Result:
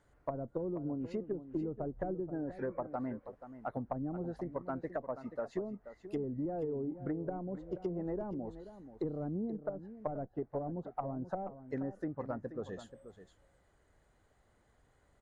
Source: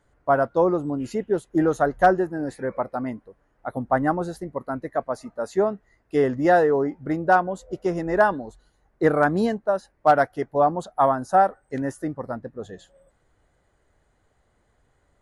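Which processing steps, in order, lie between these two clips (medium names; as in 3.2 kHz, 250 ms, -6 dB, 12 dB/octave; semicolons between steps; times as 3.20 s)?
single-diode clipper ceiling -9.5 dBFS; low-pass that closes with the level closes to 330 Hz, closed at -19.5 dBFS; dynamic bell 3.8 kHz, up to -4 dB, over -52 dBFS, Q 0.9; compression 4:1, threshold -31 dBFS, peak gain reduction 10.5 dB; on a send: delay 481 ms -12.5 dB; on the sum: trim -4 dB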